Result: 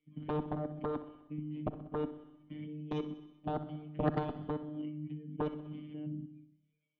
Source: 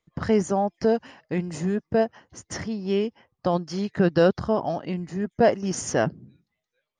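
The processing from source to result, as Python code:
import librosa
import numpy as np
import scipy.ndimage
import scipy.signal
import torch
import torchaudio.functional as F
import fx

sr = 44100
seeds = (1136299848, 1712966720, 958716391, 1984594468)

p1 = fx.low_shelf(x, sr, hz=80.0, db=-5.5)
p2 = fx.hum_notches(p1, sr, base_hz=50, count=6)
p3 = fx.hpss(p2, sr, part='percussive', gain_db=-11)
p4 = fx.level_steps(p3, sr, step_db=24)
p5 = fx.robotise(p4, sr, hz=151.0)
p6 = fx.formant_cascade(p5, sr, vowel='i')
p7 = fx.cheby_harmonics(p6, sr, harmonics=(3, 7), levels_db=(-7, -15), full_scale_db=-28.0)
p8 = fx.tremolo_shape(p7, sr, shape='triangle', hz=3.0, depth_pct=50)
p9 = p8 + fx.echo_feedback(p8, sr, ms=63, feedback_pct=56, wet_db=-14, dry=0)
p10 = fx.rev_schroeder(p9, sr, rt60_s=0.85, comb_ms=33, drr_db=15.0)
p11 = fx.band_squash(p10, sr, depth_pct=40)
y = p11 * librosa.db_to_amplitude(13.0)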